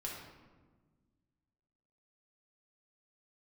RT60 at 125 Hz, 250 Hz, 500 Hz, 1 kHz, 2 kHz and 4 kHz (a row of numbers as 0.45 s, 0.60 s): 2.3 s, 2.1 s, 1.5 s, 1.3 s, 1.0 s, 0.75 s